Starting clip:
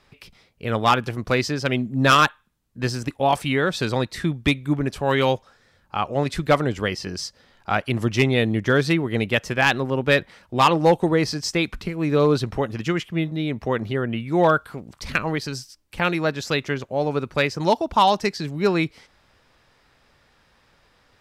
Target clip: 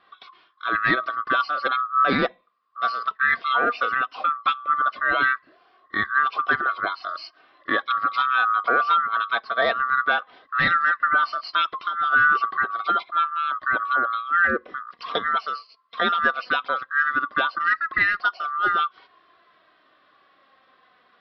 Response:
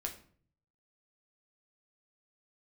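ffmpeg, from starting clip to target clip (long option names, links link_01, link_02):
-af "afftfilt=real='real(if(lt(b,960),b+48*(1-2*mod(floor(b/48),2)),b),0)':imag='imag(if(lt(b,960),b+48*(1-2*mod(floor(b/48),2)),b),0)':win_size=2048:overlap=0.75,highpass=frequency=600:poles=1,highshelf=frequency=2400:gain=-10,alimiter=limit=-14dB:level=0:latency=1:release=202,flanger=delay=2.5:depth=2.1:regen=49:speed=0.16:shape=triangular,asuperstop=centerf=870:order=8:qfactor=7.1,aresample=11025,aresample=44100,adynamicequalizer=threshold=0.00891:dfrequency=1900:dqfactor=0.7:tfrequency=1900:tqfactor=0.7:attack=5:release=100:ratio=0.375:range=2.5:mode=cutabove:tftype=highshelf,volume=9dB"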